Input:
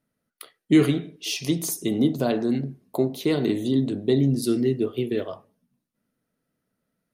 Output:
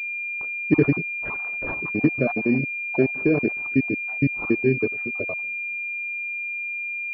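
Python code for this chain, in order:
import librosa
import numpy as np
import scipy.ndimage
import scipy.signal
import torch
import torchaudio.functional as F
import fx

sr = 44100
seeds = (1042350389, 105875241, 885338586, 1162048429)

y = fx.spec_dropout(x, sr, seeds[0], share_pct=54)
y = fx.pwm(y, sr, carrier_hz=2400.0)
y = y * librosa.db_to_amplitude(3.0)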